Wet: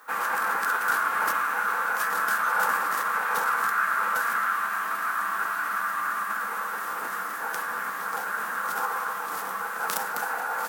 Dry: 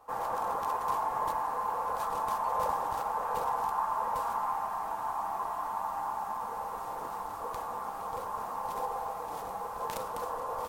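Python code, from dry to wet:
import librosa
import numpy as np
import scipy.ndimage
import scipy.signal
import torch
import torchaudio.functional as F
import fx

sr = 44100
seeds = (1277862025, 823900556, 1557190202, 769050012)

y = fx.formant_shift(x, sr, semitones=6)
y = scipy.signal.sosfilt(scipy.signal.butter(8, 160.0, 'highpass', fs=sr, output='sos'), y)
y = fx.high_shelf(y, sr, hz=4800.0, db=11.0)
y = F.gain(torch.from_numpy(y), 5.5).numpy()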